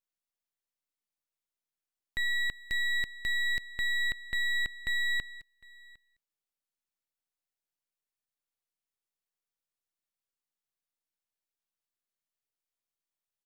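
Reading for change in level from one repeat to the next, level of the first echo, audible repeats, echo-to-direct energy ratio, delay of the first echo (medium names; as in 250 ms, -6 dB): no regular repeats, -24.0 dB, 1, -24.0 dB, 756 ms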